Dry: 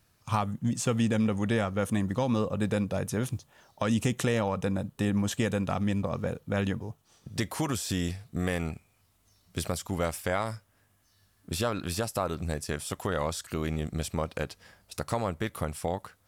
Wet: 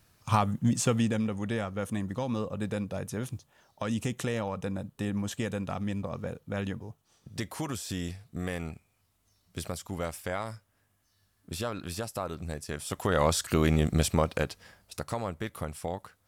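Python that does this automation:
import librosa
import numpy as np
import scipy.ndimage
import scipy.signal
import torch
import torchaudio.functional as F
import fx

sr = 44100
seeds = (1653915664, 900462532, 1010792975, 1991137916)

y = fx.gain(x, sr, db=fx.line((0.79, 3.0), (1.28, -4.5), (12.67, -4.5), (13.31, 7.0), (14.02, 7.0), (15.14, -3.5)))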